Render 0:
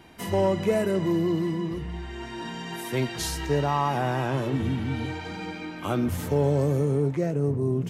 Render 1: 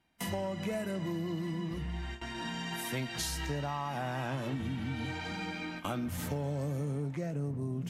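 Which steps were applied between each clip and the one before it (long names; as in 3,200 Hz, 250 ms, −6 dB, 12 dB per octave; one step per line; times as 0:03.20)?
noise gate with hold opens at −27 dBFS
graphic EQ with 15 bands 100 Hz −6 dB, 400 Hz −10 dB, 1,000 Hz −3 dB
downward compressor, threshold −32 dBFS, peak gain reduction 10 dB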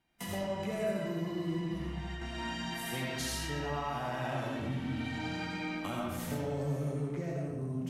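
comb and all-pass reverb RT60 1.2 s, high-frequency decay 0.6×, pre-delay 40 ms, DRR −2.5 dB
level −4 dB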